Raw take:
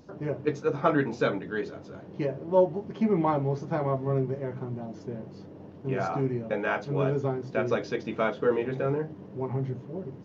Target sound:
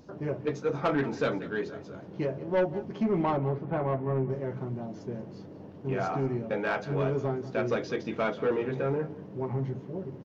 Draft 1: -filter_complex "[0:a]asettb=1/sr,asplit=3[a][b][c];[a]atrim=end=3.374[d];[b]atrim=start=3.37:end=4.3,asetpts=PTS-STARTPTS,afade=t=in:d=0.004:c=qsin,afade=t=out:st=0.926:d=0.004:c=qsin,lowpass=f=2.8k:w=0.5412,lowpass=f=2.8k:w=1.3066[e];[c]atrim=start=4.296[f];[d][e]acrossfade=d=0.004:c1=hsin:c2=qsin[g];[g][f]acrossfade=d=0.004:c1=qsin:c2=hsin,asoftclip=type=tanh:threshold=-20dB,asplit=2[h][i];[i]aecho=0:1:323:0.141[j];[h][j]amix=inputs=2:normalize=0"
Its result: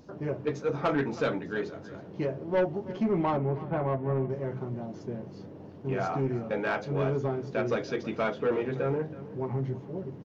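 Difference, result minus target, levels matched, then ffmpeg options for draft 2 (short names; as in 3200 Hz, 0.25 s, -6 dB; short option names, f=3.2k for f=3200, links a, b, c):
echo 0.139 s late
-filter_complex "[0:a]asettb=1/sr,asplit=3[a][b][c];[a]atrim=end=3.374[d];[b]atrim=start=3.37:end=4.3,asetpts=PTS-STARTPTS,afade=t=in:d=0.004:c=qsin,afade=t=out:st=0.926:d=0.004:c=qsin,lowpass=f=2.8k:w=0.5412,lowpass=f=2.8k:w=1.3066[e];[c]atrim=start=4.296[f];[d][e]acrossfade=d=0.004:c1=hsin:c2=qsin[g];[g][f]acrossfade=d=0.004:c1=qsin:c2=hsin,asoftclip=type=tanh:threshold=-20dB,asplit=2[h][i];[i]aecho=0:1:184:0.141[j];[h][j]amix=inputs=2:normalize=0"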